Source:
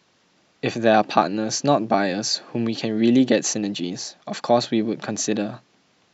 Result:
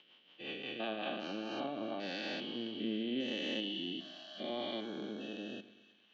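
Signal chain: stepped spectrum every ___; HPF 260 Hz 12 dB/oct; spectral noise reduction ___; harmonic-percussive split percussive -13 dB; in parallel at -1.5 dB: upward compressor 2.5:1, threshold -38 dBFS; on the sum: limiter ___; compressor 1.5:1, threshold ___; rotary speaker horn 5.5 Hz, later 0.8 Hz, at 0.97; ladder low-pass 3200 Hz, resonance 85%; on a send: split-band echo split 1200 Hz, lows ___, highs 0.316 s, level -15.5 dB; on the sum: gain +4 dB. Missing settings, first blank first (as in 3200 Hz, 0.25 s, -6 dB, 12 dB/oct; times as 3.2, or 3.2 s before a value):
0.4 s, 18 dB, -13 dBFS, -34 dBFS, 0.115 s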